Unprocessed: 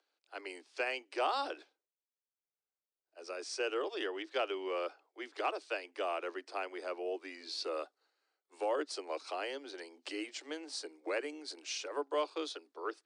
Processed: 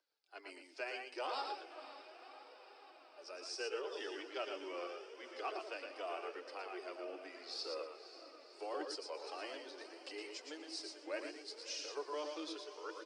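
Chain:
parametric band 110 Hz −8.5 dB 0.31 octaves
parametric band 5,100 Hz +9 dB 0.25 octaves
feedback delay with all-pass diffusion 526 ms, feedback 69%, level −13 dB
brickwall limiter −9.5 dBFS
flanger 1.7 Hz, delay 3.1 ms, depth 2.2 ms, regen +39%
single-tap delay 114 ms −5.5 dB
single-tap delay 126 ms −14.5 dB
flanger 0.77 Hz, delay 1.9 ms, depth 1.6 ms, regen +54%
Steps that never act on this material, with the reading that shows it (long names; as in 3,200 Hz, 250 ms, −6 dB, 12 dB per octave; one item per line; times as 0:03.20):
parametric band 110 Hz: nothing at its input below 240 Hz
brickwall limiter −9.5 dBFS: peak of its input −22.0 dBFS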